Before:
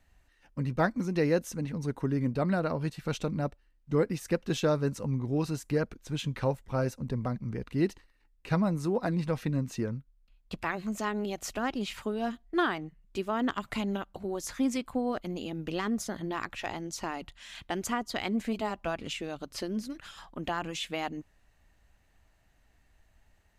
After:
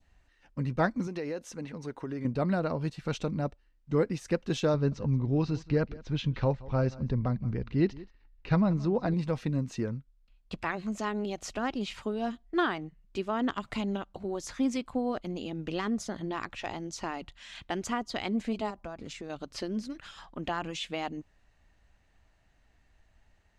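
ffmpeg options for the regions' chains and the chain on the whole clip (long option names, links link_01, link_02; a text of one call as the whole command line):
ffmpeg -i in.wav -filter_complex "[0:a]asettb=1/sr,asplit=3[link_01][link_02][link_03];[link_01]atrim=end=1.074[link_04];[link_02]atrim=start=1.07:end=2.25,asetpts=PTS-STARTPTS,afade=type=in:duration=0.004:curve=qsin,afade=type=out:start_time=1.176:duration=0.004:curve=qsin,bass=frequency=250:gain=-10,treble=frequency=4000:gain=-2,acompressor=threshold=-31dB:ratio=5:attack=3.2:release=140:knee=1:detection=peak[link_05];[link_03]atrim=start=2.246[link_06];[link_04][link_05]acrossfade=duration=0.004:curve1=hsin:curve2=qsin[link_07];[link_07][link_06]acrossfade=duration=0.004:curve1=qsin:curve2=hsin,asettb=1/sr,asplit=3[link_08][link_09][link_10];[link_08]atrim=end=4.744[link_11];[link_09]atrim=start=4.74:end=9.14,asetpts=PTS-STARTPTS,afade=type=in:duration=0.004:curve=qsin,afade=type=out:start_time=4.396:duration=0.004:curve=qsin,lowpass=frequency=5400:width=0.5412,lowpass=frequency=5400:width=1.3066,lowshelf=frequency=110:gain=9,aecho=1:1:176:0.1,atrim=end_sample=194040[link_12];[link_10]atrim=start=9.136[link_13];[link_11][link_12]acrossfade=duration=0.004:curve1=hsin:curve2=qsin[link_14];[link_14][link_13]acrossfade=duration=0.004:curve1=qsin:curve2=hsin,asettb=1/sr,asplit=3[link_15][link_16][link_17];[link_15]atrim=end=18.704[link_18];[link_16]atrim=start=18.7:end=19.3,asetpts=PTS-STARTPTS,afade=type=in:duration=0.004:curve=qsin,afade=type=out:start_time=0.596:duration=0.004:curve=qsin,equalizer=frequency=2900:width_type=o:width=0.65:gain=-10.5,acompressor=threshold=-36dB:ratio=4:attack=3.2:release=140:knee=1:detection=peak[link_19];[link_17]atrim=start=19.296[link_20];[link_18][link_19]acrossfade=duration=0.004:curve1=hsin:curve2=qsin[link_21];[link_21][link_20]acrossfade=duration=0.004:curve1=qsin:curve2=hsin,lowpass=6900,adynamicequalizer=threshold=0.00355:dfrequency=1700:dqfactor=1.3:tfrequency=1700:tqfactor=1.3:attack=5:release=100:ratio=0.375:range=2:mode=cutabove:tftype=bell" out.wav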